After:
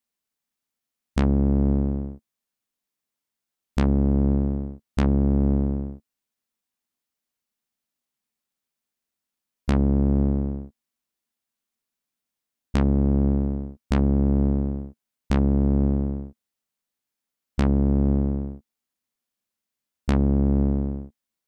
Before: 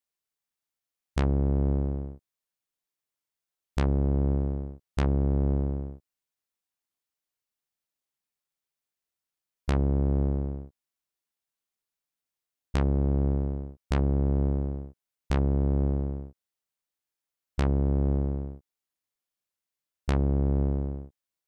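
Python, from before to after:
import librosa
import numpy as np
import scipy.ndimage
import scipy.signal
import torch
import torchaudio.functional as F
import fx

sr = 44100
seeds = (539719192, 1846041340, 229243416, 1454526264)

y = fx.peak_eq(x, sr, hz=230.0, db=10.5, octaves=0.41)
y = F.gain(torch.from_numpy(y), 3.0).numpy()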